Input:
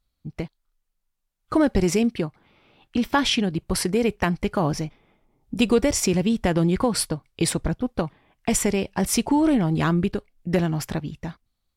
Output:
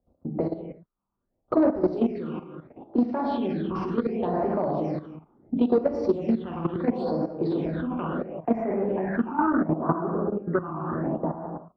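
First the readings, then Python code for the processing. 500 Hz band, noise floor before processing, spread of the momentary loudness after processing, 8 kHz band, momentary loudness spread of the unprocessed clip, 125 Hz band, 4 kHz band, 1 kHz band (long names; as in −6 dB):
−1.0 dB, −77 dBFS, 10 LU, below −40 dB, 13 LU, −7.0 dB, below −20 dB, −0.5 dB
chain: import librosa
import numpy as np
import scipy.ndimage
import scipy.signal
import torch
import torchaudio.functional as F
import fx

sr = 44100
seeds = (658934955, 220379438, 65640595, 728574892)

y = fx.curve_eq(x, sr, hz=(130.0, 400.0, 620.0, 6300.0), db=(0, 4, 7, -27))
y = fx.rev_gated(y, sr, seeds[0], gate_ms=390, shape='falling', drr_db=-3.5)
y = 10.0 ** (-7.0 / 20.0) * np.tanh(y / 10.0 ** (-7.0 / 20.0))
y = scipy.signal.sosfilt(scipy.signal.butter(2, 65.0, 'highpass', fs=sr, output='sos'), y)
y = fx.filter_sweep_lowpass(y, sr, from_hz=4300.0, to_hz=1200.0, start_s=7.48, end_s=9.72, q=3.7)
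y = fx.level_steps(y, sr, step_db=13)
y = fx.bass_treble(y, sr, bass_db=-10, treble_db=-8)
y = fx.env_lowpass(y, sr, base_hz=710.0, full_db=-24.5)
y = fx.phaser_stages(y, sr, stages=8, low_hz=550.0, high_hz=3200.0, hz=0.72, feedback_pct=40)
y = fx.band_squash(y, sr, depth_pct=70)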